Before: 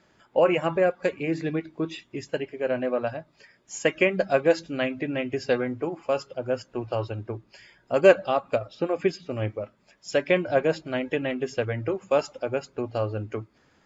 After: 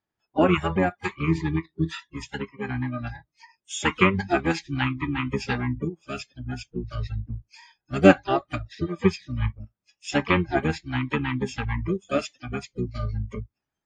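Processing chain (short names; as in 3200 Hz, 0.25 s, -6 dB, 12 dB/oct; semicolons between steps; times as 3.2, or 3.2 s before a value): spectral noise reduction 28 dB; bell 500 Hz -11.5 dB 0.27 oct; harmoniser -12 st -1 dB, +4 st -15 dB; gain +2 dB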